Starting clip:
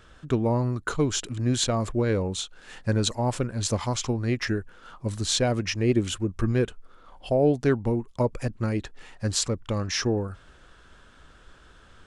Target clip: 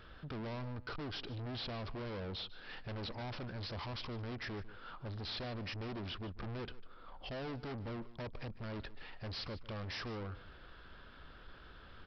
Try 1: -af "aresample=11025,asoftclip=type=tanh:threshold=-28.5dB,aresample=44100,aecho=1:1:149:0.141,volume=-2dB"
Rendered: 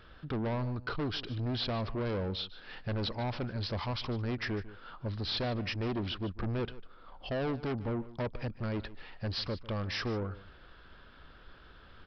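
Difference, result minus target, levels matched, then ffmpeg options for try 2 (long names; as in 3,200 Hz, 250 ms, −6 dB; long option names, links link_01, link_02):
soft clipping: distortion −5 dB
-af "aresample=11025,asoftclip=type=tanh:threshold=-39dB,aresample=44100,aecho=1:1:149:0.141,volume=-2dB"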